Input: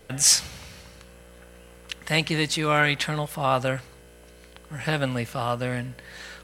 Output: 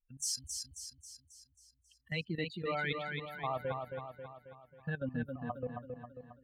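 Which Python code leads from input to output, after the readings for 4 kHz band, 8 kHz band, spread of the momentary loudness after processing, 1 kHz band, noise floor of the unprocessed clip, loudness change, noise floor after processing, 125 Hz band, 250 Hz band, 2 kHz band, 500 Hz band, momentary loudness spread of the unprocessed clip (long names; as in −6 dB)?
−17.0 dB, −17.0 dB, 17 LU, −13.5 dB, −50 dBFS, −15.0 dB, −74 dBFS, −13.0 dB, −11.5 dB, −14.0 dB, −11.0 dB, 21 LU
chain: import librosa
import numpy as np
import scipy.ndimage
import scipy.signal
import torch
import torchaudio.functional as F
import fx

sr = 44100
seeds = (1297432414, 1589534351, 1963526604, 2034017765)

y = fx.bin_expand(x, sr, power=3.0)
y = fx.small_body(y, sr, hz=(220.0, 490.0), ring_ms=30, db=7)
y = fx.level_steps(y, sr, step_db=15)
y = fx.echo_feedback(y, sr, ms=270, feedback_pct=52, wet_db=-5.0)
y = y * librosa.db_to_amplitude(-5.0)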